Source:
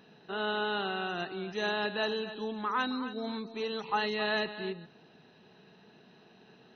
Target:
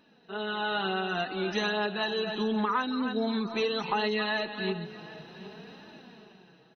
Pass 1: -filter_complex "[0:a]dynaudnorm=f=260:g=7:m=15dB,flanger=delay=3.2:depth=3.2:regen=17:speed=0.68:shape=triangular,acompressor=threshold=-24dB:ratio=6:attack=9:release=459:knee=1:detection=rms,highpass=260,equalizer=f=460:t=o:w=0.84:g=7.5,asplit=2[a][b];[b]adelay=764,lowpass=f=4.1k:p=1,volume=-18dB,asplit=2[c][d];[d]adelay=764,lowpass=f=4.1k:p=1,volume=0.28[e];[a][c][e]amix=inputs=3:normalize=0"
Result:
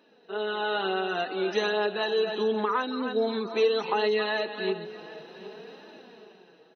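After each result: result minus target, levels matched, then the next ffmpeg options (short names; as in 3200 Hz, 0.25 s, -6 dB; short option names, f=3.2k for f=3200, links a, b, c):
250 Hz band -5.0 dB; 500 Hz band +3.5 dB
-filter_complex "[0:a]dynaudnorm=f=260:g=7:m=15dB,flanger=delay=3.2:depth=3.2:regen=17:speed=0.68:shape=triangular,acompressor=threshold=-24dB:ratio=6:attack=9:release=459:knee=1:detection=rms,equalizer=f=460:t=o:w=0.84:g=7.5,asplit=2[a][b];[b]adelay=764,lowpass=f=4.1k:p=1,volume=-18dB,asplit=2[c][d];[d]adelay=764,lowpass=f=4.1k:p=1,volume=0.28[e];[a][c][e]amix=inputs=3:normalize=0"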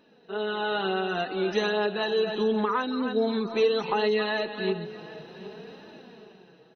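500 Hz band +3.5 dB
-filter_complex "[0:a]dynaudnorm=f=260:g=7:m=15dB,flanger=delay=3.2:depth=3.2:regen=17:speed=0.68:shape=triangular,acompressor=threshold=-24dB:ratio=6:attack=9:release=459:knee=1:detection=rms,asplit=2[a][b];[b]adelay=764,lowpass=f=4.1k:p=1,volume=-18dB,asplit=2[c][d];[d]adelay=764,lowpass=f=4.1k:p=1,volume=0.28[e];[a][c][e]amix=inputs=3:normalize=0"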